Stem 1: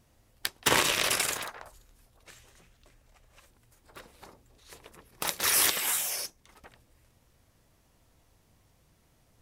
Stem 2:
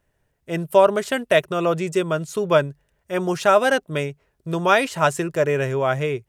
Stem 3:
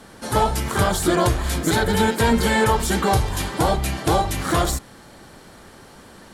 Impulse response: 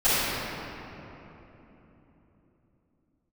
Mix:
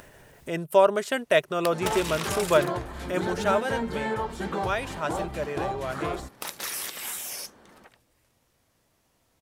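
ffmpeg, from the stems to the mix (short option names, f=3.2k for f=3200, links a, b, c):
-filter_complex "[0:a]acompressor=threshold=-30dB:ratio=6,adelay=1200,volume=-0.5dB[a];[1:a]acompressor=mode=upward:threshold=-24dB:ratio=2.5,volume=-3.5dB,afade=t=out:st=3.05:d=0.67:silence=0.398107[b];[2:a]lowpass=f=1.5k:p=1,alimiter=limit=-12dB:level=0:latency=1:release=215,adelay=1500,volume=-7dB[c];[a][b][c]amix=inputs=3:normalize=0,lowshelf=f=120:g=-11"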